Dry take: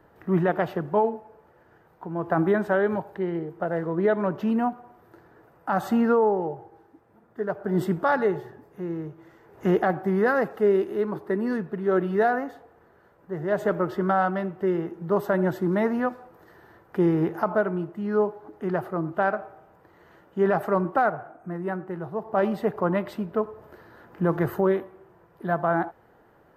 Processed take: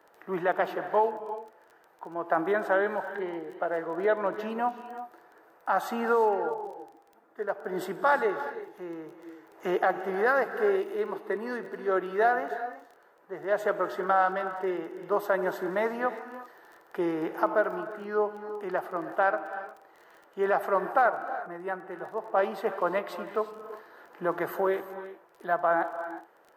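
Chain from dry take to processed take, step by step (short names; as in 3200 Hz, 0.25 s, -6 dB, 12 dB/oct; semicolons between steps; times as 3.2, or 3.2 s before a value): HPF 490 Hz 12 dB/oct; non-linear reverb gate 0.39 s rising, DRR 10.5 dB; crackle 21/s -43 dBFS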